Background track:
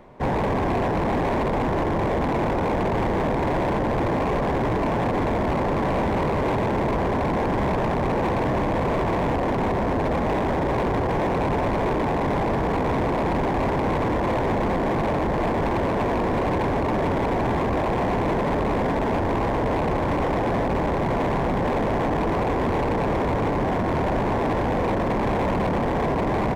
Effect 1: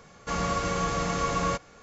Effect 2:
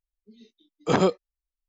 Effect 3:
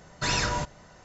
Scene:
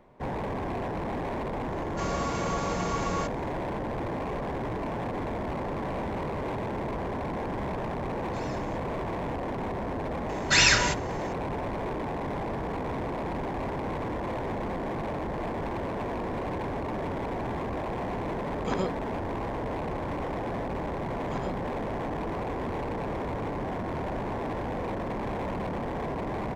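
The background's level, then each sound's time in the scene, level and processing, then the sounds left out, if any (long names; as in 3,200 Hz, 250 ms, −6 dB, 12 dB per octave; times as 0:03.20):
background track −9.5 dB
0:01.70: mix in 1 −4.5 dB
0:08.12: mix in 3 −14 dB + downward compressor, threshold −30 dBFS
0:10.29: mix in 3 −0.5 dB + drawn EQ curve 960 Hz 0 dB, 2,100 Hz +12 dB, 4,000 Hz +8 dB
0:17.78: mix in 2 −10 dB
0:20.42: mix in 2 −18 dB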